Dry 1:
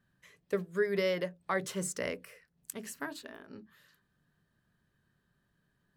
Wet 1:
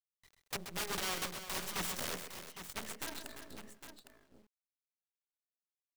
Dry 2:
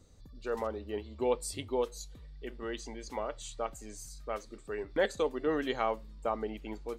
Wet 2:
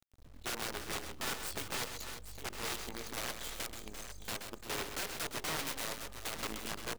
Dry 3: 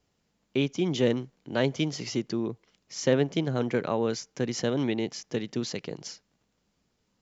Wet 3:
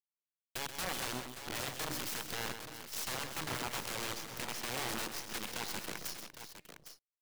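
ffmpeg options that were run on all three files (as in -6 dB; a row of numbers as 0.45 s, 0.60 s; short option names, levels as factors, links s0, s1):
-filter_complex "[0:a]afftdn=nr=13:nf=-49,equalizer=f=3400:w=2.7:g=6.5,bandreject=f=306:t=h:w=4,bandreject=f=612:t=h:w=4,bandreject=f=918:t=h:w=4,bandreject=f=1224:t=h:w=4,bandreject=f=1530:t=h:w=4,bandreject=f=1836:t=h:w=4,bandreject=f=2142:t=h:w=4,bandreject=f=2448:t=h:w=4,bandreject=f=2754:t=h:w=4,bandreject=f=3060:t=h:w=4,bandreject=f=3366:t=h:w=4,bandreject=f=3672:t=h:w=4,bandreject=f=3978:t=h:w=4,bandreject=f=4284:t=h:w=4,acrossover=split=530|650[s0][s1][s2];[s2]alimiter=level_in=1.41:limit=0.0631:level=0:latency=1:release=14,volume=0.708[s3];[s0][s1][s3]amix=inputs=3:normalize=0,acompressor=threshold=0.02:ratio=10,aeval=exprs='(mod(50.1*val(0)+1,2)-1)/50.1':c=same,acrusher=bits=7:dc=4:mix=0:aa=0.000001,asplit=2[s4][s5];[s5]aecho=0:1:130|345|808:0.376|0.266|0.299[s6];[s4][s6]amix=inputs=2:normalize=0"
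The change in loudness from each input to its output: -4.5 LU, -4.0 LU, -9.5 LU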